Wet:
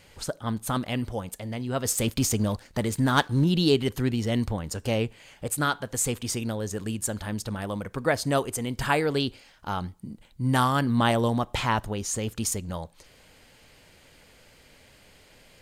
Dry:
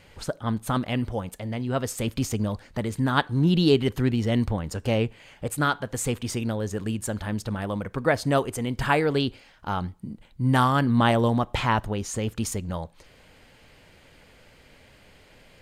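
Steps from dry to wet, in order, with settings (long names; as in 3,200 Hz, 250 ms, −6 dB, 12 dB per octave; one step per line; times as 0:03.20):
0:01.85–0:03.44: leveller curve on the samples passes 1
bass and treble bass −1 dB, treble +7 dB
level −2 dB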